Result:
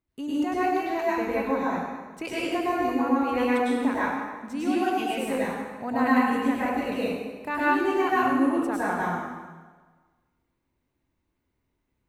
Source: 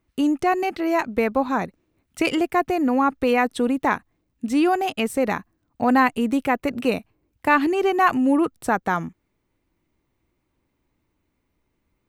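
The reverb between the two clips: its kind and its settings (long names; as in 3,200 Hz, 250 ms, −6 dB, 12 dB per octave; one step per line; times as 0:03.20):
dense smooth reverb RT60 1.4 s, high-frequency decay 0.85×, pre-delay 90 ms, DRR −8.5 dB
level −13.5 dB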